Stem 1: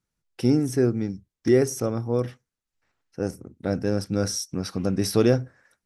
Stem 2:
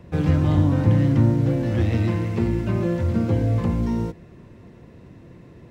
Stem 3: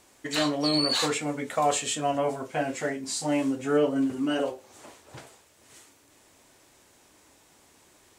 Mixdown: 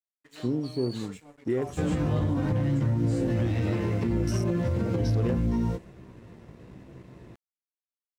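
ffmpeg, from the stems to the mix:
-filter_complex "[0:a]afwtdn=0.0224,volume=-7dB[a];[1:a]flanger=delay=15:depth=3:speed=0.94,adelay=1650,volume=2.5dB[b];[2:a]volume=-18.5dB[c];[a][b]amix=inputs=2:normalize=0,alimiter=limit=-18dB:level=0:latency=1:release=108,volume=0dB[d];[c][d]amix=inputs=2:normalize=0,aeval=exprs='sgn(val(0))*max(abs(val(0))-0.00158,0)':c=same"

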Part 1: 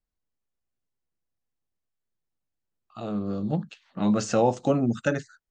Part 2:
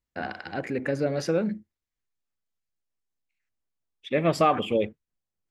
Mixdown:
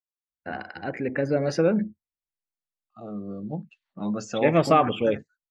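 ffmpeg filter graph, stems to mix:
-filter_complex "[0:a]highpass=110,volume=-10.5dB[a];[1:a]adelay=300,volume=-1dB[b];[a][b]amix=inputs=2:normalize=0,afftdn=nr=17:nf=-48,dynaudnorm=f=250:g=11:m=6dB,adynamicequalizer=threshold=0.00891:dfrequency=3500:dqfactor=0.7:tfrequency=3500:tqfactor=0.7:attack=5:release=100:ratio=0.375:range=2.5:mode=cutabove:tftype=highshelf"

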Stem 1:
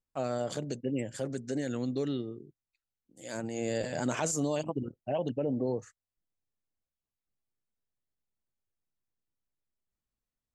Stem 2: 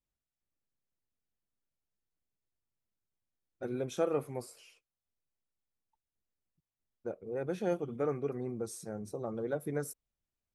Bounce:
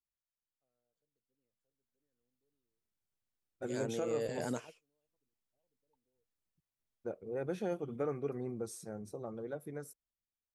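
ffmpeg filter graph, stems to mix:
-filter_complex "[0:a]agate=range=-8dB:threshold=-48dB:ratio=16:detection=peak,equalizer=f=460:w=6.1:g=9.5,adelay=450,volume=-4.5dB[a];[1:a]dynaudnorm=f=270:g=13:m=11dB,volume=-12.5dB,asplit=2[b][c];[c]apad=whole_len=485099[d];[a][d]sidechaingate=range=-53dB:threshold=-56dB:ratio=16:detection=peak[e];[e][b]amix=inputs=2:normalize=0,alimiter=level_in=1.5dB:limit=-24dB:level=0:latency=1:release=230,volume=-1.5dB"

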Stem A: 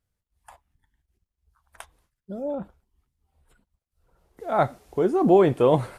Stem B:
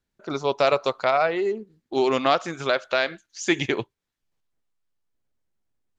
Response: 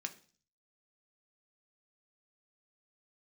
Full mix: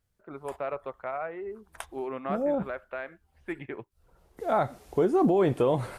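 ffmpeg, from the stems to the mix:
-filter_complex "[0:a]alimiter=limit=-18dB:level=0:latency=1:release=192,volume=2.5dB[a];[1:a]lowpass=f=2.1k:w=0.5412,lowpass=f=2.1k:w=1.3066,volume=-13dB[b];[a][b]amix=inputs=2:normalize=0"

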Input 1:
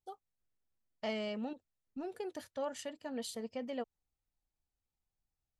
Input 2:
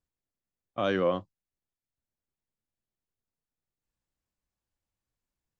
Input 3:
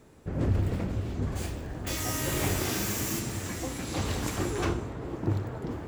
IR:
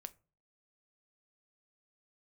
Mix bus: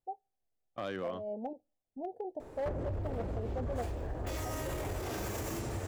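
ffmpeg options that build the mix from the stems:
-filter_complex "[0:a]firequalizer=gain_entry='entry(160,0);entry(770,13);entry(1200,-28)':delay=0.05:min_phase=1,volume=-6dB,asplit=2[a][b];[b]volume=-8dB[c];[1:a]volume=-6dB,asplit=3[d][e][f];[e]volume=-22dB[g];[2:a]equalizer=f=560:w=0.49:g=14.5,alimiter=limit=-17.5dB:level=0:latency=1:release=15,adelay=2400,volume=-3.5dB[h];[f]apad=whole_len=251357[i];[a][i]sidechaincompress=threshold=-43dB:ratio=8:attack=7.8:release=184[j];[d][h]amix=inputs=2:normalize=0,asubboost=boost=6.5:cutoff=80,acompressor=threshold=-34dB:ratio=6,volume=0dB[k];[3:a]atrim=start_sample=2205[l];[c][g]amix=inputs=2:normalize=0[m];[m][l]afir=irnorm=-1:irlink=0[n];[j][k][n]amix=inputs=3:normalize=0,asoftclip=type=hard:threshold=-30dB"

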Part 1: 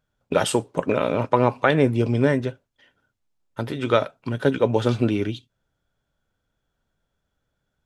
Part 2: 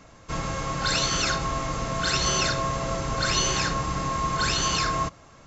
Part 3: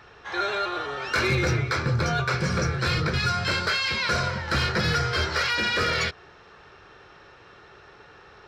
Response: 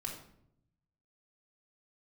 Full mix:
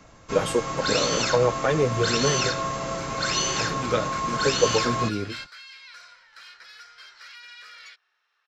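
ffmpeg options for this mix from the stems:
-filter_complex "[0:a]equalizer=f=480:w=6.8:g=9,asplit=2[a][b];[b]adelay=8.4,afreqshift=-1.9[c];[a][c]amix=inputs=2:normalize=1,volume=-3.5dB,asplit=2[d][e];[1:a]acrossover=split=140|3000[f][g][h];[f]acompressor=threshold=-43dB:ratio=6[i];[i][g][h]amix=inputs=3:normalize=0,volume=-0.5dB[j];[2:a]highpass=1.5k,adelay=1850,volume=-9dB[k];[e]apad=whole_len=455300[l];[k][l]sidechaingate=range=-9dB:threshold=-46dB:ratio=16:detection=peak[m];[d][j][m]amix=inputs=3:normalize=0"

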